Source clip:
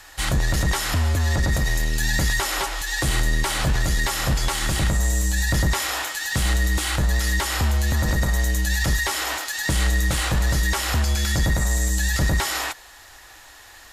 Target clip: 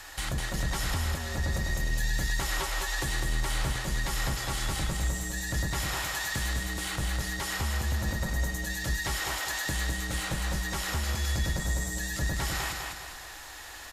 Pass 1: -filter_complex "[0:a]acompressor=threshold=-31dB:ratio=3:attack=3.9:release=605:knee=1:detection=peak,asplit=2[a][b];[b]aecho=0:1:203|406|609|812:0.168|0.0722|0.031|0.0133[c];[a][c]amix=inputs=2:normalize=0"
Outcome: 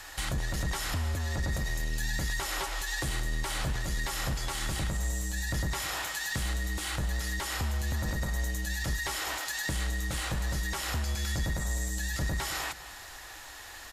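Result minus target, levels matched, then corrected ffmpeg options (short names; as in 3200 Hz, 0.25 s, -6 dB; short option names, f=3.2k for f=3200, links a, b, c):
echo-to-direct -12 dB
-filter_complex "[0:a]acompressor=threshold=-31dB:ratio=3:attack=3.9:release=605:knee=1:detection=peak,asplit=2[a][b];[b]aecho=0:1:203|406|609|812|1015:0.668|0.287|0.124|0.0531|0.0228[c];[a][c]amix=inputs=2:normalize=0"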